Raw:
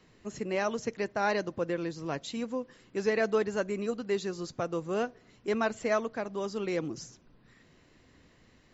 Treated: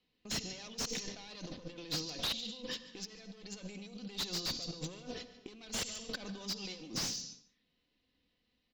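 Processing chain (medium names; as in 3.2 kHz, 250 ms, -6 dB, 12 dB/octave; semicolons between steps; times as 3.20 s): single-diode clipper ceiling -30.5 dBFS; low-pass 6.4 kHz 24 dB/octave; gate -51 dBFS, range -32 dB; level-controlled noise filter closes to 2.9 kHz, open at -30 dBFS; comb 4 ms, depth 48%; compressor with a negative ratio -48 dBFS, ratio -1; resonant high shelf 2.4 kHz +13.5 dB, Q 1.5; echo from a far wall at 25 m, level -17 dB; on a send at -13 dB: reverberation, pre-delay 53 ms; on the sum: slew-rate limiter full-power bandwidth 88 Hz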